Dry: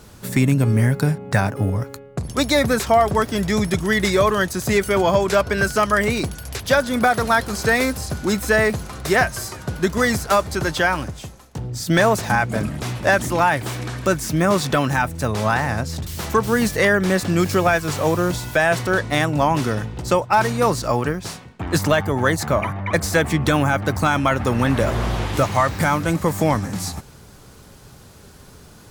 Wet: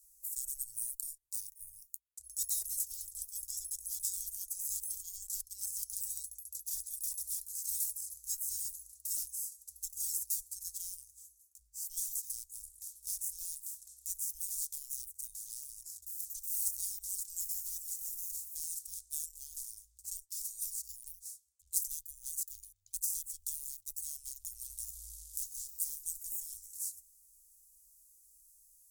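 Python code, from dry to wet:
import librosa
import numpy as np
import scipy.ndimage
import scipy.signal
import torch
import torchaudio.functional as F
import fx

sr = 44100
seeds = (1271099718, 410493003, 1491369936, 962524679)

y = fx.cheby_harmonics(x, sr, harmonics=(5, 7), levels_db=(-34, -20), full_scale_db=-6.0)
y = scipy.signal.sosfilt(scipy.signal.cheby2(4, 70, [160.0, 1800.0], 'bandstop', fs=sr, output='sos'), y)
y = scipy.signal.lfilter([1.0, -0.8], [1.0], y)
y = F.gain(torch.from_numpy(y), -1.0).numpy()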